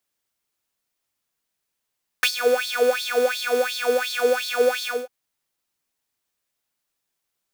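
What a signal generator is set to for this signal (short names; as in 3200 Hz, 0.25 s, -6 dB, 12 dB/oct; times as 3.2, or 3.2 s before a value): synth patch with filter wobble B4, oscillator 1 square, oscillator 2 saw, oscillator 2 level -10 dB, sub -1 dB, noise -6 dB, filter highpass, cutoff 1100 Hz, Q 5.7, filter envelope 0.5 oct, attack 1.3 ms, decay 0.08 s, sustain -12 dB, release 0.23 s, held 2.62 s, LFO 2.8 Hz, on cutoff 1.7 oct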